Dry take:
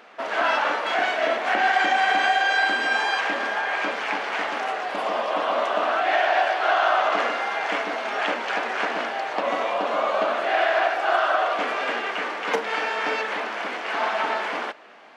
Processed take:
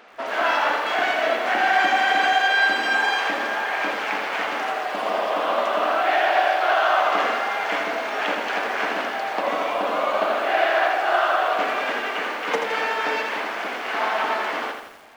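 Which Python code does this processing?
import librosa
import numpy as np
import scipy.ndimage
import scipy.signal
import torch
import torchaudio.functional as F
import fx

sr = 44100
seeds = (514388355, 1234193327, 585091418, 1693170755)

y = fx.echo_crushed(x, sr, ms=83, feedback_pct=55, bits=8, wet_db=-5.5)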